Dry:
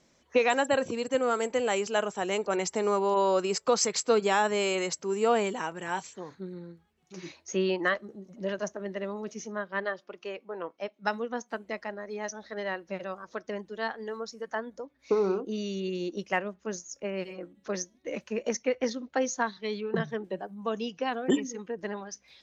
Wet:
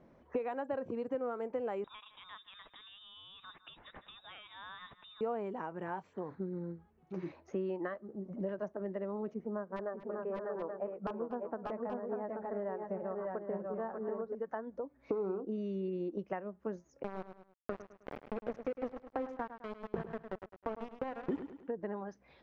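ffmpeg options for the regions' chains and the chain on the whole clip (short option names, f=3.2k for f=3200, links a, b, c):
-filter_complex "[0:a]asettb=1/sr,asplit=3[a][b][c];[a]atrim=end=1.844[d];[b]atrim=start=1.84:end=5.21,asetpts=PTS-STARTPTS,afade=t=in:d=0.004:c=qsin,afade=t=out:st=3.366:d=0.004:c=qsin,aecho=1:1:155:0.0841,atrim=end_sample=148617,acompressor=threshold=-28dB:ratio=2:attack=3.2:release=140:knee=1:detection=peak,lowpass=f=3.4k:t=q:w=0.5098,lowpass=f=3.4k:t=q:w=0.6013,lowpass=f=3.4k:t=q:w=0.9,lowpass=f=3.4k:t=q:w=2.563,afreqshift=-4000[e];[c]atrim=start=5.206[f];[d][e]acrossfade=d=0.004:c1=hsin:c2=qsin[g];[g][f]acrossfade=d=0.004:c1=qsin:c2=hsin,asettb=1/sr,asplit=3[h][i][j];[h]atrim=end=9.344[k];[i]atrim=start=9.34:end=14.35,asetpts=PTS-STARTPTS,afade=t=in:d=0.004:c=qsin,afade=t=out:st=5.006:d=0.004:c=qsin,lowpass=1.3k,aeval=exprs='(mod(11.2*val(0)+1,2)-1)/11.2':c=same,aecho=1:1:240|585|597|829:0.141|0.282|0.596|0.335,atrim=end_sample=220941[l];[j]atrim=start=14.346[m];[k][l]acrossfade=d=0.004:c1=hsin:c2=qsin[n];[n][m]acrossfade=d=0.004:c1=qsin:c2=hsin,asettb=1/sr,asplit=3[o][p][q];[o]atrim=end=17.034[r];[p]atrim=start=17.03:end=21.68,asetpts=PTS-STARTPTS,afade=t=in:d=0.004:c=qsin,afade=t=out:st=4.646:d=0.004:c=qsin,aeval=exprs='val(0)*gte(abs(val(0)),0.0422)':c=same,aecho=1:1:104|208|312:0.237|0.0617|0.016,atrim=end_sample=205065[s];[q]atrim=start=21.676[t];[r][s]acrossfade=d=0.004:c1=hsin:c2=qsin[u];[u][t]acrossfade=d=0.004:c1=qsin:c2=hsin,acompressor=threshold=-42dB:ratio=4,lowpass=1.1k,volume=6dB"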